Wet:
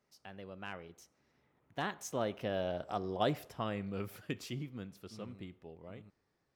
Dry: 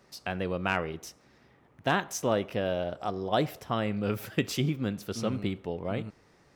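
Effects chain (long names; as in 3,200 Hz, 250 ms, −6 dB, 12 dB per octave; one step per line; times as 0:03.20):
source passing by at 0:02.95, 17 m/s, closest 11 metres
level −4.5 dB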